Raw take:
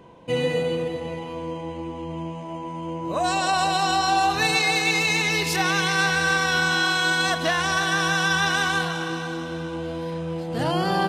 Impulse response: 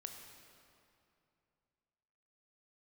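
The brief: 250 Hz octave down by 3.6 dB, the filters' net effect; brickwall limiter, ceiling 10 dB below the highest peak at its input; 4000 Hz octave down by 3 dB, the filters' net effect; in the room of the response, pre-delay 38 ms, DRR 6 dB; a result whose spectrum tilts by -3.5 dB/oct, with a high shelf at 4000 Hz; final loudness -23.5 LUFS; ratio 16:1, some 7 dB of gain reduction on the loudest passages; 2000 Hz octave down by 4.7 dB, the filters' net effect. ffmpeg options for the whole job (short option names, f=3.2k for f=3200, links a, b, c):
-filter_complex "[0:a]equalizer=f=250:t=o:g=-6.5,equalizer=f=2k:t=o:g=-7.5,highshelf=f=4k:g=8,equalizer=f=4k:t=o:g=-6,acompressor=threshold=-26dB:ratio=16,alimiter=level_in=2dB:limit=-24dB:level=0:latency=1,volume=-2dB,asplit=2[a][b];[1:a]atrim=start_sample=2205,adelay=38[c];[b][c]afir=irnorm=-1:irlink=0,volume=-2dB[d];[a][d]amix=inputs=2:normalize=0,volume=10.5dB"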